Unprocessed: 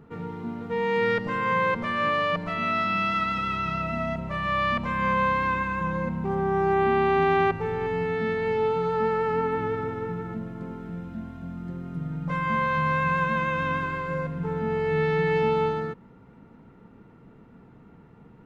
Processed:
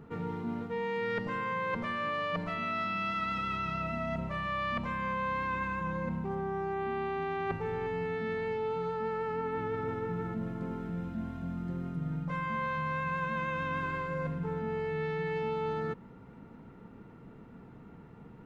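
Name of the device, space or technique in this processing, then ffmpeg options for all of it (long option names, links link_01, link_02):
compression on the reversed sound: -af "areverse,acompressor=threshold=-31dB:ratio=6,areverse"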